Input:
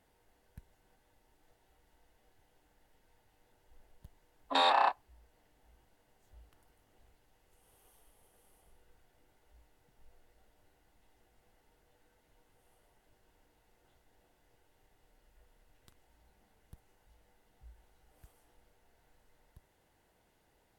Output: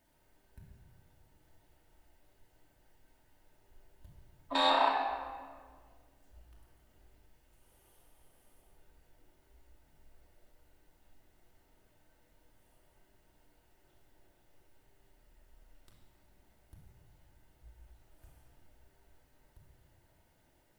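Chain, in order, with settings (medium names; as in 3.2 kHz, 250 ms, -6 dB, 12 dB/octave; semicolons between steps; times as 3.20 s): added noise blue -79 dBFS; reverberation RT60 1.8 s, pre-delay 3 ms, DRR -2 dB; trim -4 dB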